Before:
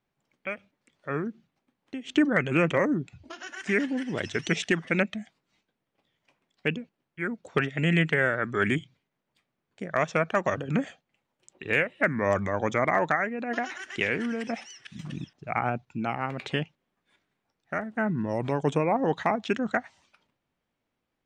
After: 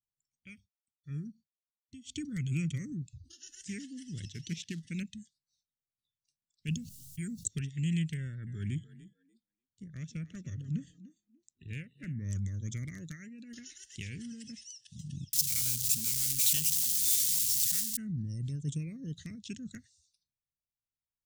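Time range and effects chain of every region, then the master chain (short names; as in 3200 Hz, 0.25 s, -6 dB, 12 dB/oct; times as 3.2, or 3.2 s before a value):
0.49–2.92 expander -58 dBFS + comb 0.9 ms, depth 40%
4.25–4.83 short-mantissa float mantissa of 2-bit + BPF 120–4000 Hz
6.68–7.48 tone controls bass +5 dB, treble +13 dB + fast leveller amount 50%
8.17–12.29 LPF 2100 Hz 6 dB/oct + frequency-shifting echo 0.294 s, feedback 32%, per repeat +35 Hz, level -14.5 dB
15.33–17.97 zero-crossing step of -27 dBFS + tilt +3.5 dB/oct
whole clip: spectral noise reduction 17 dB; Chebyshev band-stop 100–6600 Hz, order 2; gain +3 dB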